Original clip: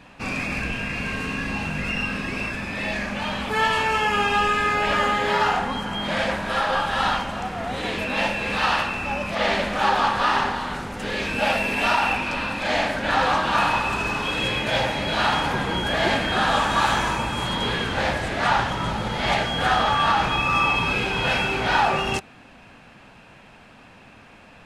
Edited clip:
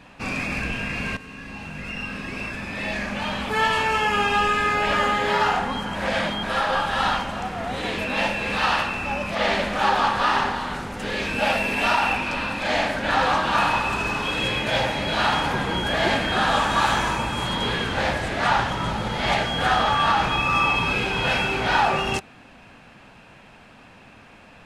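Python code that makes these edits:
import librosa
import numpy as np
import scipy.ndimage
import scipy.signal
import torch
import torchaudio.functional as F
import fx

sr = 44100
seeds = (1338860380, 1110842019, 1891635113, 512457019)

y = fx.edit(x, sr, fx.fade_in_from(start_s=1.17, length_s=1.97, floor_db=-14.0),
    fx.reverse_span(start_s=5.95, length_s=0.48), tone=tone)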